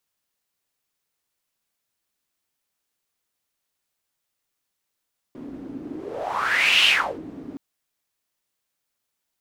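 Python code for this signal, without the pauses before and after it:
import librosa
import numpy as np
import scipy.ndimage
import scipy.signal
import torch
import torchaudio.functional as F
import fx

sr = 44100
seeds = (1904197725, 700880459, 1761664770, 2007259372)

y = fx.whoosh(sr, seeds[0], length_s=2.22, peak_s=1.51, rise_s=1.07, fall_s=0.38, ends_hz=280.0, peak_hz=2900.0, q=6.4, swell_db=19.0)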